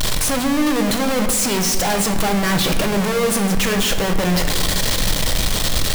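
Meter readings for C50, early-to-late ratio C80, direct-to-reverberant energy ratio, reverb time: 7.5 dB, 9.0 dB, 5.0 dB, 1.4 s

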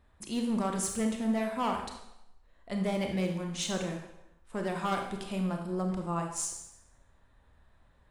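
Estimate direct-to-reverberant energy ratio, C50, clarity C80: 3.0 dB, 5.5 dB, 8.0 dB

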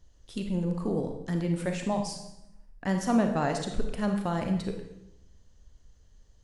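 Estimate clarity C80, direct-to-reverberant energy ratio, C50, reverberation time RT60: 9.0 dB, 4.0 dB, 6.0 dB, 0.85 s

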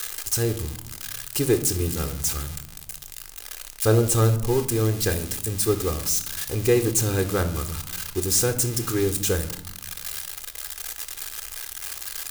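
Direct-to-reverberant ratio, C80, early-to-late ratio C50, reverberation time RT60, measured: 9.0 dB, 16.0 dB, 12.5 dB, 0.75 s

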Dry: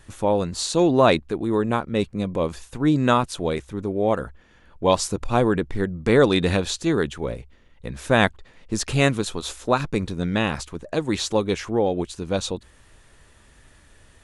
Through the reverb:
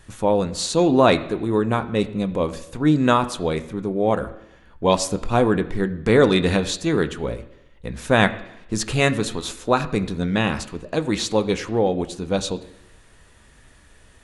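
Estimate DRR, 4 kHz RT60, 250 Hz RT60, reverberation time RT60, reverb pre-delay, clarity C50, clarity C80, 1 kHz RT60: 9.0 dB, 0.90 s, 0.85 s, 0.85 s, 3 ms, 15.0 dB, 16.5 dB, 0.85 s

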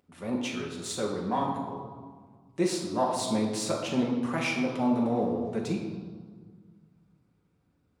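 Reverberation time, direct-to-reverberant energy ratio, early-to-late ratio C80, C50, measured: 1.6 s, −2.5 dB, 6.0 dB, 3.5 dB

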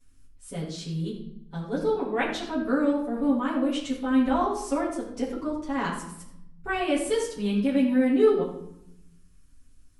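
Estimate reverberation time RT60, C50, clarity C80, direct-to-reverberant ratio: 0.75 s, 5.0 dB, 7.5 dB, −9.5 dB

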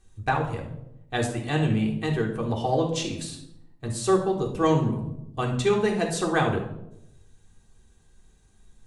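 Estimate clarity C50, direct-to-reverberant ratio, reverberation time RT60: 7.0 dB, −1.5 dB, 0.85 s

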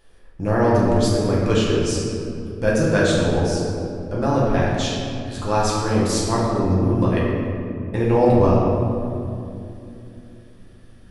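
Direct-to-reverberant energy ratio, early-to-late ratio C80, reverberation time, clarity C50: −6.5 dB, 1.0 dB, 2.8 s, −1.0 dB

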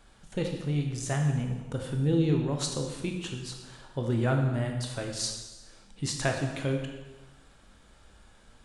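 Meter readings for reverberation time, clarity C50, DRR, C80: 1.2 s, 5.0 dB, 2.0 dB, 6.5 dB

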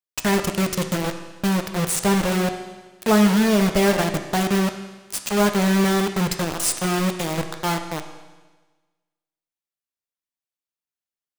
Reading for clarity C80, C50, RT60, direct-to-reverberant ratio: 10.0 dB, 8.5 dB, 1.3 s, 6.0 dB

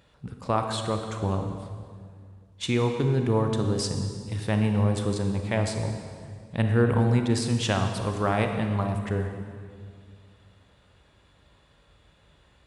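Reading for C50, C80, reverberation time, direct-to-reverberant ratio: 5.5 dB, 6.5 dB, 2.1 s, 4.5 dB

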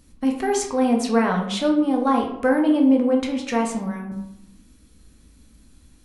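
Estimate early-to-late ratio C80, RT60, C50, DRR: 9.5 dB, 0.85 s, 6.5 dB, 1.0 dB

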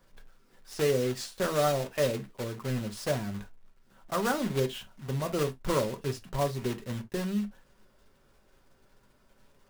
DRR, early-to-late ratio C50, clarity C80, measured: 5.0 dB, 18.5 dB, 37.5 dB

